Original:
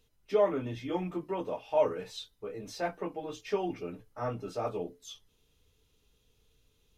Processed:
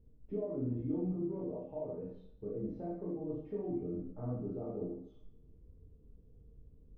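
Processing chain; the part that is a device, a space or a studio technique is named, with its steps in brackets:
television next door (downward compressor 3 to 1, threshold −45 dBFS, peak gain reduction 17.5 dB; low-pass filter 270 Hz 12 dB per octave; convolution reverb RT60 0.65 s, pre-delay 16 ms, DRR −4.5 dB)
level +8 dB

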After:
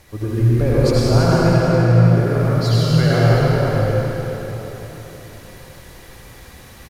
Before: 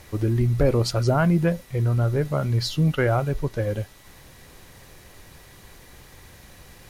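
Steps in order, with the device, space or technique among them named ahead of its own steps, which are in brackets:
0:01.27–0:02.05: low-pass filter 5,700 Hz
cave (single-tap delay 326 ms −8.5 dB; convolution reverb RT60 4.2 s, pre-delay 74 ms, DRR −8 dB)
level −2.5 dB

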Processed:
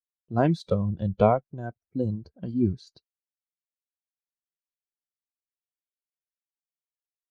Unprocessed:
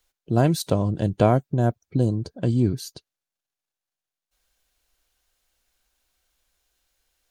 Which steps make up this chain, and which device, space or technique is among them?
noise reduction from a noise print of the clip's start 15 dB
0:01.82–0:02.87: low-pass that shuts in the quiet parts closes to 2,700 Hz, open at −20 dBFS
hearing-loss simulation (low-pass filter 2,300 Hz 12 dB per octave; downward expander −55 dBFS)

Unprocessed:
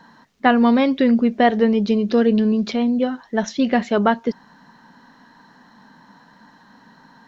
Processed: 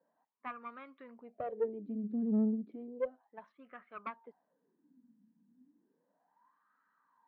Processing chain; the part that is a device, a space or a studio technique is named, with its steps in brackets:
0:03.52–0:03.92: low-pass filter 2,300 Hz 12 dB per octave
wah-wah guitar rig (LFO wah 0.33 Hz 210–1,300 Hz, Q 11; tube saturation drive 19 dB, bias 0.5; loudspeaker in its box 77–4,200 Hz, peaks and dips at 92 Hz +6 dB, 170 Hz +6 dB, 290 Hz +6 dB, 460 Hz +4 dB, 880 Hz −5 dB, 2,300 Hz +6 dB)
level −8.5 dB

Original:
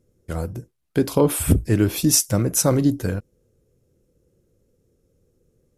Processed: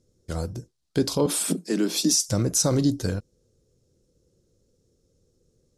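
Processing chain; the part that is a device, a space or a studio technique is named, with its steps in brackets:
low-pass filter 7,000 Hz 12 dB per octave
over-bright horn tweeter (high shelf with overshoot 3,300 Hz +8.5 dB, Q 1.5; brickwall limiter −8.5 dBFS, peak gain reduction 10.5 dB)
0:01.26–0:02.25: Butterworth high-pass 170 Hz 96 dB per octave
level −2.5 dB

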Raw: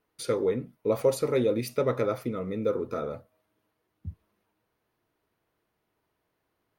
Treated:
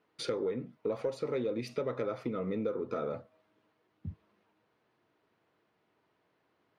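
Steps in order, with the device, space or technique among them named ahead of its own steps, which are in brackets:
AM radio (band-pass filter 130–4,400 Hz; downward compressor 6 to 1, threshold −34 dBFS, peak gain reduction 15.5 dB; soft clipping −25 dBFS, distortion −23 dB)
level +4 dB

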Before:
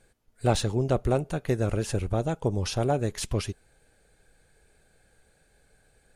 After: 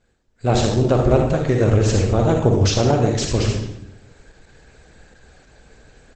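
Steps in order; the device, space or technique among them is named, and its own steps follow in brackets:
0:01.88–0:02.59: downward expander −50 dBFS
speakerphone in a meeting room (convolution reverb RT60 0.75 s, pre-delay 40 ms, DRR 1.5 dB; far-end echo of a speakerphone 180 ms, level −21 dB; automatic gain control gain up to 15 dB; level −1.5 dB; Opus 12 kbit/s 48,000 Hz)

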